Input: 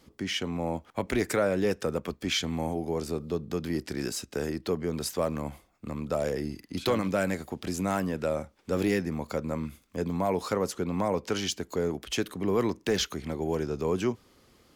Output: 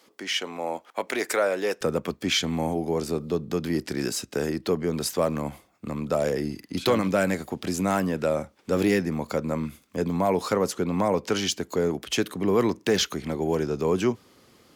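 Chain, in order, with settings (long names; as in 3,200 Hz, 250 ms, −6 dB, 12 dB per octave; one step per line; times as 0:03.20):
high-pass filter 470 Hz 12 dB per octave, from 0:01.81 98 Hz
level +4.5 dB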